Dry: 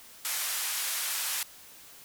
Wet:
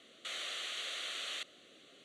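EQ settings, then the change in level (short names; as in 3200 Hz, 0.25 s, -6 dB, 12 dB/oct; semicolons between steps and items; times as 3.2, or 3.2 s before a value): speaker cabinet 400–4500 Hz, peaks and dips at 440 Hz -3 dB, 910 Hz -9 dB, 1600 Hz -9 dB, 2400 Hz -7 dB; bell 2100 Hz -11.5 dB 1.9 oct; fixed phaser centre 2200 Hz, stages 4; +12.0 dB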